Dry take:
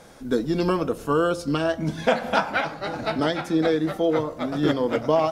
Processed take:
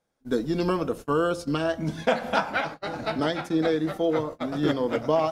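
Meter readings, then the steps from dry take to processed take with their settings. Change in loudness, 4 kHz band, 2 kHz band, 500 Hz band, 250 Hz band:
−2.5 dB, −2.5 dB, −2.5 dB, −2.5 dB, −2.5 dB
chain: noise gate −32 dBFS, range −28 dB
level −2.5 dB

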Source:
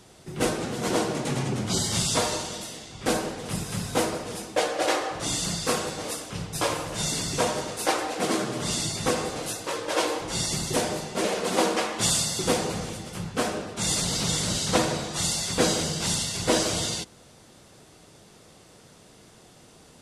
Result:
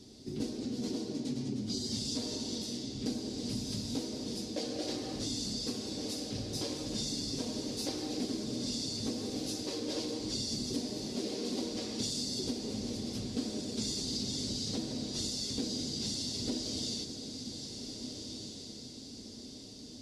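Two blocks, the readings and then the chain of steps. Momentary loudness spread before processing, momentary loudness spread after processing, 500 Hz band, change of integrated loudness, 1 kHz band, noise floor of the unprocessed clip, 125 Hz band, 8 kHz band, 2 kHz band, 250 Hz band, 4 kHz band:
8 LU, 7 LU, −13.0 dB, −9.5 dB, −21.5 dB, −53 dBFS, −10.0 dB, −12.0 dB, −20.5 dB, −4.5 dB, −7.0 dB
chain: drawn EQ curve 170 Hz 0 dB, 250 Hz +11 dB, 690 Hz −9 dB, 1,300 Hz −16 dB, 2,000 Hz −10 dB, 2,900 Hz −6 dB, 4,700 Hz +8 dB, 8,600 Hz −7 dB
downward compressor 6 to 1, threshold −31 dBFS, peak gain reduction 16 dB
notch comb filter 170 Hz
feedback delay with all-pass diffusion 1,591 ms, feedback 45%, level −7 dB
level −2 dB

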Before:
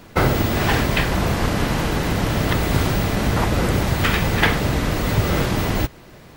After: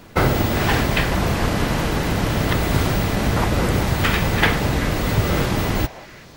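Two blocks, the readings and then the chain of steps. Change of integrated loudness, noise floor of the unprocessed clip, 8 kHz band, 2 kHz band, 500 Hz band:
0.0 dB, −44 dBFS, 0.0 dB, 0.0 dB, 0.0 dB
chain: echo through a band-pass that steps 193 ms, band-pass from 730 Hz, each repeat 1.4 octaves, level −10 dB

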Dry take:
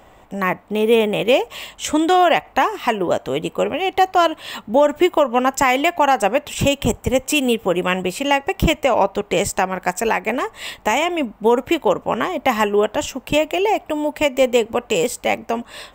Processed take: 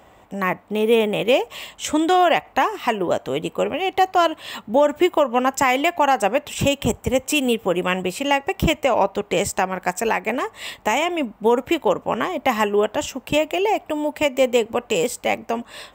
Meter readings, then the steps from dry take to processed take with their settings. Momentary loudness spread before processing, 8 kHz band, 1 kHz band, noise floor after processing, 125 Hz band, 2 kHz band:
6 LU, −2.0 dB, −2.0 dB, −51 dBFS, −2.5 dB, −2.0 dB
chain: high-pass filter 54 Hz
level −2 dB

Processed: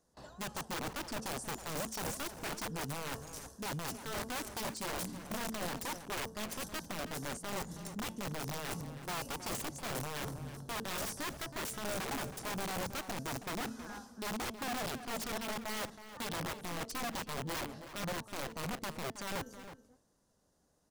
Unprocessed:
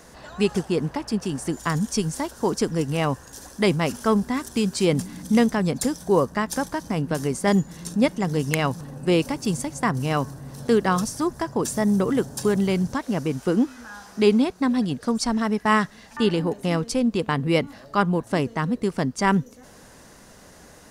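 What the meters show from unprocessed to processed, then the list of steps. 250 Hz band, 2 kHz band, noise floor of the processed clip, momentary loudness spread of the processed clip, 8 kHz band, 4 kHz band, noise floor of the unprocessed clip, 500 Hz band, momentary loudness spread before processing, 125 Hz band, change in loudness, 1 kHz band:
−21.5 dB, −11.5 dB, −73 dBFS, 4 LU, −8.0 dB, −9.0 dB, −48 dBFS, −19.0 dB, 6 LU, −18.0 dB, −16.0 dB, −13.0 dB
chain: noise gate with hold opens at −35 dBFS
parametric band 2,100 Hz −10 dB 1.1 octaves
hum removal 222.3 Hz, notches 16
reversed playback
downward compressor 16 to 1, threshold −28 dBFS, peak gain reduction 16.5 dB
reversed playback
wrap-around overflow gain 28.5 dB
slap from a distant wall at 55 metres, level −11 dB
level −5 dB

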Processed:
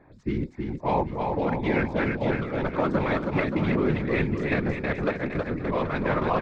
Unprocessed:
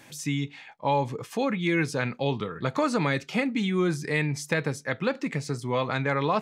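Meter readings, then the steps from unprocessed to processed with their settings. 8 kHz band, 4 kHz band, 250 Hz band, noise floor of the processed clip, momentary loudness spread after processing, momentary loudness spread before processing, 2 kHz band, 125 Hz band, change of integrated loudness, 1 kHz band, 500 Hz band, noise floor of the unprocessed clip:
below −20 dB, −7.0 dB, +1.5 dB, −50 dBFS, 5 LU, 6 LU, −0.5 dB, +1.0 dB, +1.0 dB, +1.0 dB, +2.0 dB, −51 dBFS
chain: adaptive Wiener filter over 15 samples
low-pass filter 3,100 Hz 12 dB per octave
random phases in short frames
on a send: bouncing-ball delay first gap 320 ms, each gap 0.8×, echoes 5
on the sum: one half of a high-frequency compander decoder only

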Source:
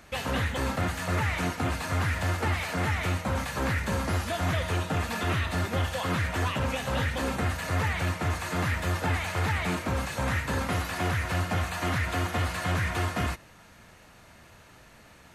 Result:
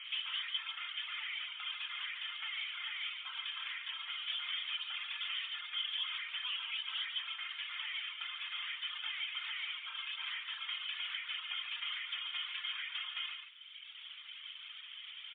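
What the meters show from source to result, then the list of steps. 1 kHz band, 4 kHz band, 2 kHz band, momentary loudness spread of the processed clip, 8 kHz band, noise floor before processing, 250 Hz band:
−19.5 dB, +2.5 dB, −9.5 dB, 10 LU, below −40 dB, −54 dBFS, below −40 dB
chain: linear delta modulator 64 kbit/s, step −40.5 dBFS
reverb reduction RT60 1.7 s
high-pass filter 1,500 Hz 24 dB per octave
comb filter 0.9 ms, depth 40%
downward compressor 8 to 1, threshold −40 dBFS, peak gain reduction 9 dB
low-pass with resonance 3,100 Hz, resonance Q 13
soft clipping −22.5 dBFS, distortion −22 dB
on a send: single-tap delay 143 ms −7 dB
on the sum: level −5.5 dB
MP3 24 kbit/s 8,000 Hz

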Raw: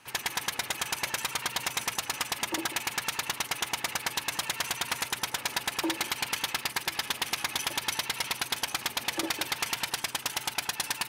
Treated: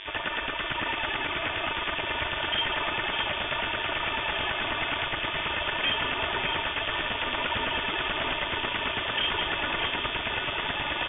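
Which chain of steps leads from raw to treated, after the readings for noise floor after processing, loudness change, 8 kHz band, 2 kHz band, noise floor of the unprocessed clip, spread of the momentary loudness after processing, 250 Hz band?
−33 dBFS, +3.0 dB, below −40 dB, +5.5 dB, −44 dBFS, 3 LU, +2.5 dB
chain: comb filter 3.5 ms, depth 93%
hum with harmonics 100 Hz, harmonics 19, −47 dBFS −3 dB per octave
wave folding −25.5 dBFS
delay that swaps between a low-pass and a high-pass 610 ms, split 1,500 Hz, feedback 79%, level −6 dB
voice inversion scrambler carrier 3,500 Hz
high-frequency loss of the air 130 metres
level +7 dB

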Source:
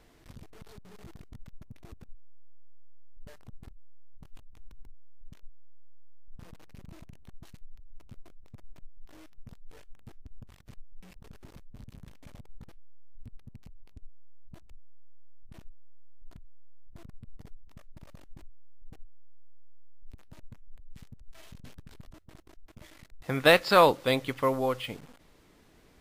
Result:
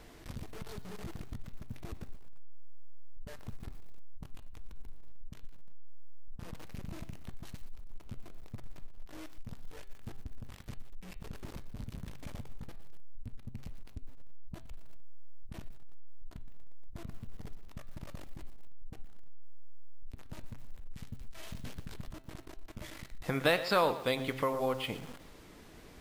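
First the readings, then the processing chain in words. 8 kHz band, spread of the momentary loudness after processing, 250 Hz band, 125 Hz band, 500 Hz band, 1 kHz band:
−3.0 dB, 22 LU, −4.0 dB, −0.5 dB, −7.0 dB, −7.5 dB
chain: hum removal 131.7 Hz, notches 34
downward compressor 2 to 1, threshold −43 dBFS, peak gain reduction 15.5 dB
feedback echo at a low word length 119 ms, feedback 35%, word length 9 bits, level −14.5 dB
level +6.5 dB

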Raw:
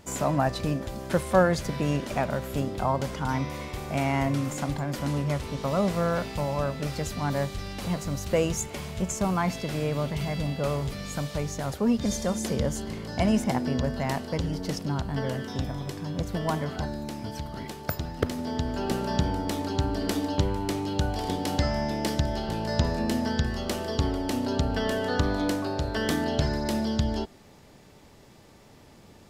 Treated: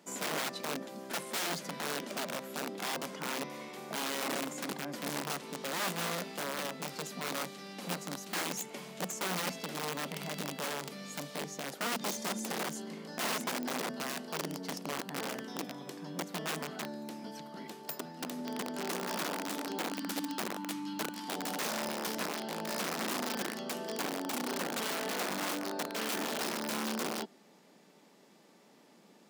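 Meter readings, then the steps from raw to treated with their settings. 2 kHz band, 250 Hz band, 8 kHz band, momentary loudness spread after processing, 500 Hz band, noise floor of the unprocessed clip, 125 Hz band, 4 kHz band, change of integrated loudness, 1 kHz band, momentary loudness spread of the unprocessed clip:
−2.5 dB, −11.5 dB, −1.0 dB, 7 LU, −10.5 dB, −52 dBFS, −20.0 dB, −1.5 dB, −8.0 dB, −6.5 dB, 7 LU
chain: gain on a spectral selection 0:19.89–0:21.29, 330–870 Hz −22 dB
wrap-around overflow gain 22 dB
Butterworth high-pass 170 Hz 48 dB per octave
level −7 dB

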